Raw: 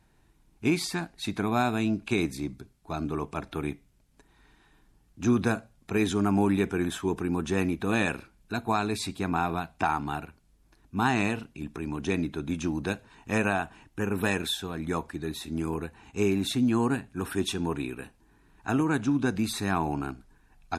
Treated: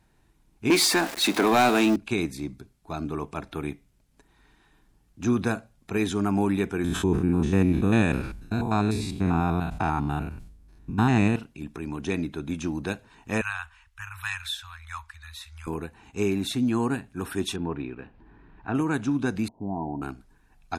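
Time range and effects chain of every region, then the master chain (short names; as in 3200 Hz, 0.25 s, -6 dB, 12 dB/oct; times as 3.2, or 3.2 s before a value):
0.7–1.96 zero-crossing step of -39 dBFS + HPF 260 Hz 24 dB/oct + sample leveller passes 3
6.84–11.36 stepped spectrum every 0.1 s + low shelf 280 Hz +11.5 dB + sustainer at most 62 dB/s
13.41–15.67 inverse Chebyshev band-stop 170–550 Hz, stop band 50 dB + high shelf 6700 Hz -6.5 dB
17.56–18.75 median filter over 5 samples + upward compressor, threshold -41 dBFS + air absorption 340 m
19.48–20.02 switching dead time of 0.12 ms + rippled Chebyshev low-pass 980 Hz, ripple 6 dB
whole clip: dry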